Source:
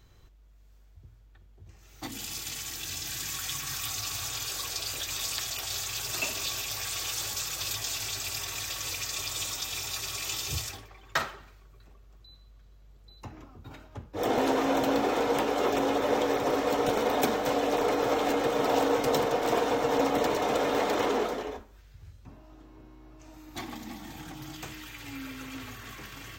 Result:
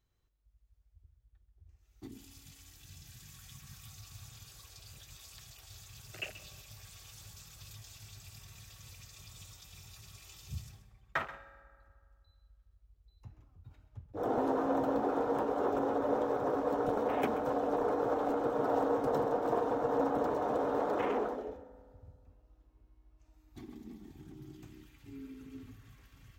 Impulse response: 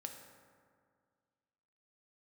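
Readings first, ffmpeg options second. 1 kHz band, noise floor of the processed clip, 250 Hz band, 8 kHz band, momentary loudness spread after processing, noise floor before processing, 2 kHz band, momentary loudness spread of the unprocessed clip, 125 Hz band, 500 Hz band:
-5.5 dB, -70 dBFS, -5.0 dB, -20.5 dB, 20 LU, -55 dBFS, -11.0 dB, 16 LU, -5.5 dB, -5.0 dB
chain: -filter_complex "[0:a]afwtdn=0.0251,equalizer=f=11000:t=o:w=0.26:g=7,asplit=2[s0][s1];[1:a]atrim=start_sample=2205,adelay=132[s2];[s1][s2]afir=irnorm=-1:irlink=0,volume=0.316[s3];[s0][s3]amix=inputs=2:normalize=0,volume=0.562"

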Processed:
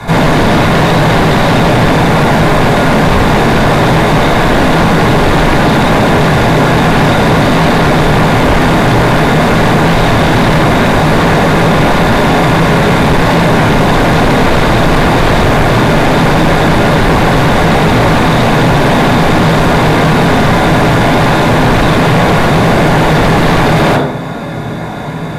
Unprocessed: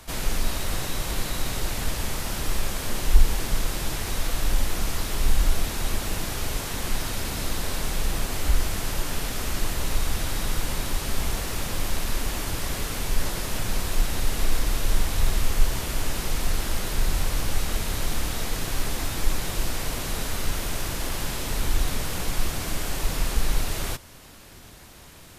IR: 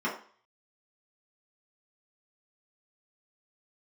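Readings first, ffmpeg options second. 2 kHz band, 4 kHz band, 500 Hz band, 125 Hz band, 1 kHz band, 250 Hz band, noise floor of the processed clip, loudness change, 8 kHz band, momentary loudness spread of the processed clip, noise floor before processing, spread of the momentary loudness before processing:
+22.5 dB, +15.5 dB, +27.0 dB, +22.0 dB, +26.5 dB, +27.0 dB, -17 dBFS, +20.5 dB, +5.5 dB, 1 LU, -46 dBFS, 3 LU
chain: -filter_complex "[1:a]atrim=start_sample=2205,asetrate=29547,aresample=44100[s0];[0:a][s0]afir=irnorm=-1:irlink=0,aeval=exprs='0.531*sin(PI/2*4.47*val(0)/0.531)':c=same,aemphasis=mode=reproduction:type=50kf,bandreject=f=1300:w=15,volume=1.19"

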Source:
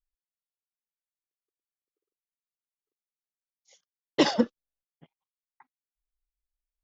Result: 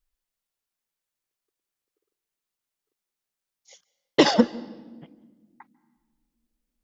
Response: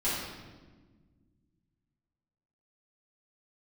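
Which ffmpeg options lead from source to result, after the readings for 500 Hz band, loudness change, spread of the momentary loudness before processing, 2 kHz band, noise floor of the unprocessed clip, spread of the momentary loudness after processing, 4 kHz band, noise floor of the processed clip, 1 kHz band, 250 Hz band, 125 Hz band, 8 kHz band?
+5.5 dB, +5.0 dB, 8 LU, +5.5 dB, under -85 dBFS, 11 LU, +5.0 dB, under -85 dBFS, +6.0 dB, +5.0 dB, +6.5 dB, no reading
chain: -filter_complex "[0:a]acompressor=threshold=0.1:ratio=6,asplit=2[s0][s1];[1:a]atrim=start_sample=2205,adelay=142[s2];[s1][s2]afir=irnorm=-1:irlink=0,volume=0.0335[s3];[s0][s3]amix=inputs=2:normalize=0,volume=2.66"

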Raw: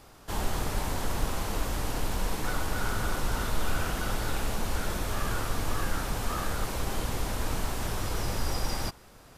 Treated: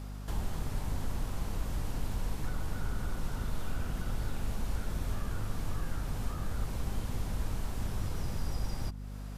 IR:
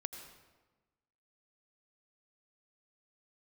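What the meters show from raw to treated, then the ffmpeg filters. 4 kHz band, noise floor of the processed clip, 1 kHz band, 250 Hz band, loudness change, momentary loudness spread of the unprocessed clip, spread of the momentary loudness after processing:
-11.5 dB, -41 dBFS, -11.0 dB, -4.5 dB, -5.5 dB, 1 LU, 1 LU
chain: -filter_complex "[0:a]acrossover=split=210|700[s0][s1][s2];[s0]acompressor=threshold=0.0355:ratio=4[s3];[s1]acompressor=threshold=0.00282:ratio=4[s4];[s2]acompressor=threshold=0.00355:ratio=4[s5];[s3][s4][s5]amix=inputs=3:normalize=0,aeval=exprs='val(0)+0.01*(sin(2*PI*50*n/s)+sin(2*PI*2*50*n/s)/2+sin(2*PI*3*50*n/s)/3+sin(2*PI*4*50*n/s)/4+sin(2*PI*5*50*n/s)/5)':c=same"

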